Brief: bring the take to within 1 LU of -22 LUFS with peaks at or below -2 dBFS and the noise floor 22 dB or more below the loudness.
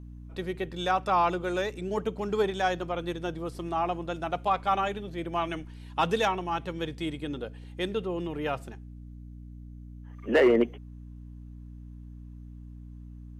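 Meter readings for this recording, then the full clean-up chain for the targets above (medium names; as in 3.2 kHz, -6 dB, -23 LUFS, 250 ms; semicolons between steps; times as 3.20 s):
hum 60 Hz; highest harmonic 300 Hz; hum level -41 dBFS; loudness -29.5 LUFS; peak level -14.0 dBFS; loudness target -22.0 LUFS
-> de-hum 60 Hz, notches 5; trim +7.5 dB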